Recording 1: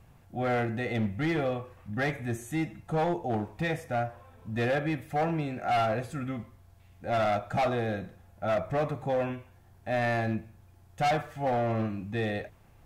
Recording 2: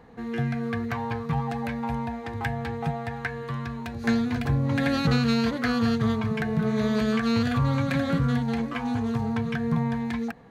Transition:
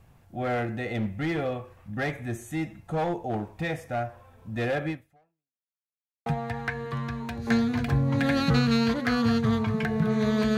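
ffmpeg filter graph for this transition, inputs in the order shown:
-filter_complex "[0:a]apad=whole_dur=10.57,atrim=end=10.57,asplit=2[a][b];[a]atrim=end=5.73,asetpts=PTS-STARTPTS,afade=t=out:st=4.9:d=0.83:c=exp[c];[b]atrim=start=5.73:end=6.26,asetpts=PTS-STARTPTS,volume=0[d];[1:a]atrim=start=2.83:end=7.14,asetpts=PTS-STARTPTS,afade=t=in:d=0.004:c=hsin[e];[c][d][e]concat=n=3:v=0:a=1"

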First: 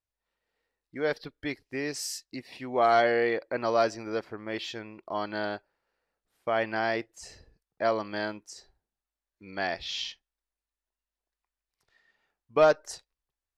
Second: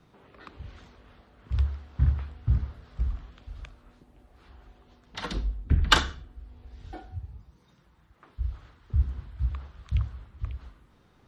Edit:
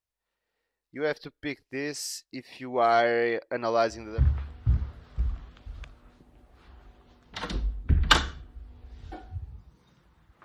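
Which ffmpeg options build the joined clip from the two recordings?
-filter_complex "[0:a]apad=whole_dur=10.44,atrim=end=10.44,atrim=end=4.26,asetpts=PTS-STARTPTS[a];[1:a]atrim=start=1.69:end=8.25,asetpts=PTS-STARTPTS[b];[a][b]acrossfade=d=0.38:c1=qsin:c2=qsin"

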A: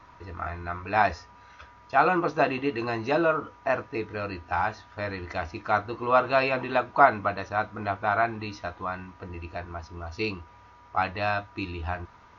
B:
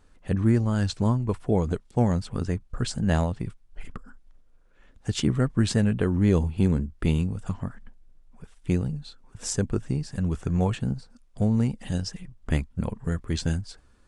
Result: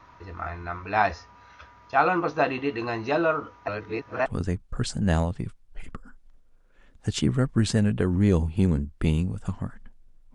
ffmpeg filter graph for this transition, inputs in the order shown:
-filter_complex "[0:a]apad=whole_dur=10.34,atrim=end=10.34,asplit=2[a][b];[a]atrim=end=3.682[c];[b]atrim=start=3.678:end=4.262,asetpts=PTS-STARTPTS,areverse[d];[1:a]atrim=start=2.268:end=8.35[e];[c][d]acrossfade=d=0.004:c1=hsin:c2=hsin[f];[f][e]acrossfade=d=0.004:c1=hsin:c2=hsin"

